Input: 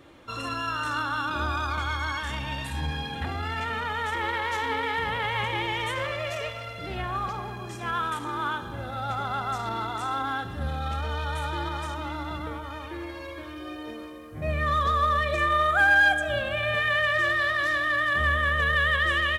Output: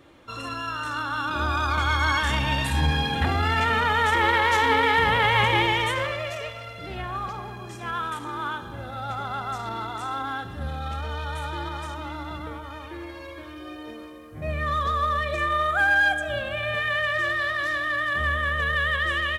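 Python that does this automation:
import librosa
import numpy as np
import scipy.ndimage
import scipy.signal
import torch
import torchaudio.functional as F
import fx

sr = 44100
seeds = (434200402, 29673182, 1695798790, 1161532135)

y = fx.gain(x, sr, db=fx.line((0.95, -1.0), (2.14, 8.0), (5.59, 8.0), (6.38, -1.0)))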